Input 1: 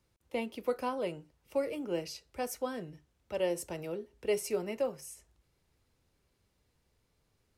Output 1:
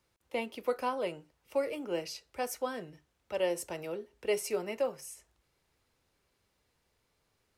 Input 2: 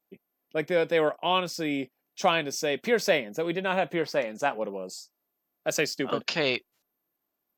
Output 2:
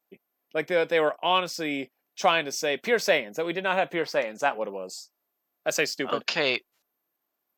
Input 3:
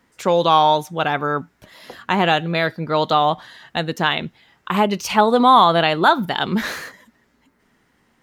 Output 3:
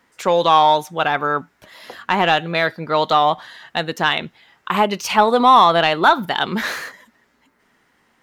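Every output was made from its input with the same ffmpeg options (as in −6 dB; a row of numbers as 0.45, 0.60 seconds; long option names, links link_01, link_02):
-filter_complex "[0:a]crystalizer=i=1.5:c=0,asplit=2[link_01][link_02];[link_02]highpass=frequency=720:poles=1,volume=8dB,asoftclip=type=tanh:threshold=0dB[link_03];[link_01][link_03]amix=inputs=2:normalize=0,lowpass=frequency=2200:poles=1,volume=-6dB"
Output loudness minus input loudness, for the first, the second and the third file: +0.5, +1.5, +1.0 LU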